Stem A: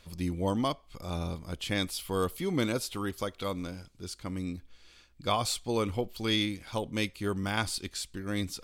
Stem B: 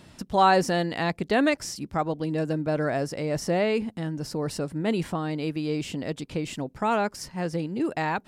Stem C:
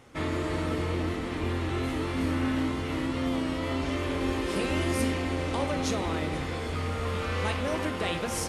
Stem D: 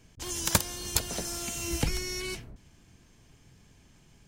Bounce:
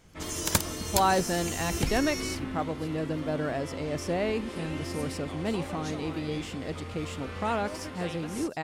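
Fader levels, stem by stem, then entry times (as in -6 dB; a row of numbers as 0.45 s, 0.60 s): -18.5 dB, -5.0 dB, -9.0 dB, -1.0 dB; 0.00 s, 0.60 s, 0.00 s, 0.00 s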